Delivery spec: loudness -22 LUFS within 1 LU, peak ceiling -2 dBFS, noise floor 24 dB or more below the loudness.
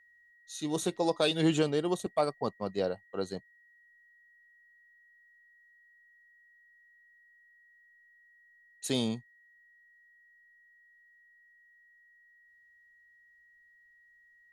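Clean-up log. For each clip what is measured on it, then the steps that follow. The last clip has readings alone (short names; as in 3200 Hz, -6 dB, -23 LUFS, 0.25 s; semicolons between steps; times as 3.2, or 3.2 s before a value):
steady tone 1900 Hz; tone level -60 dBFS; loudness -32.0 LUFS; peak -13.0 dBFS; loudness target -22.0 LUFS
-> notch 1900 Hz, Q 30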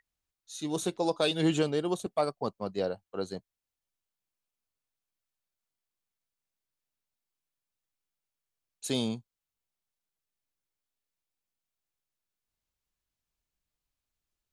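steady tone none; loudness -31.5 LUFS; peak -13.0 dBFS; loudness target -22.0 LUFS
-> gain +9.5 dB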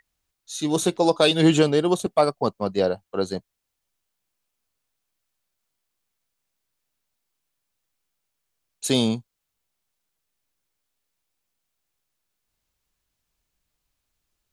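loudness -22.0 LUFS; peak -3.5 dBFS; noise floor -80 dBFS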